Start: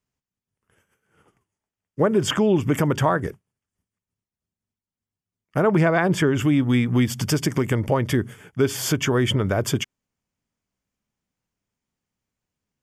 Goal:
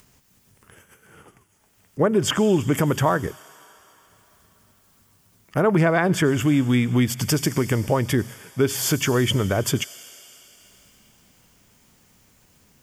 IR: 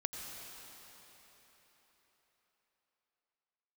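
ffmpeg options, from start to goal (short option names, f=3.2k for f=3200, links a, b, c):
-filter_complex "[0:a]acompressor=mode=upward:threshold=-38dB:ratio=2.5,asplit=2[a][b];[b]aderivative[c];[1:a]atrim=start_sample=2205[d];[c][d]afir=irnorm=-1:irlink=0,volume=-3.5dB[e];[a][e]amix=inputs=2:normalize=0"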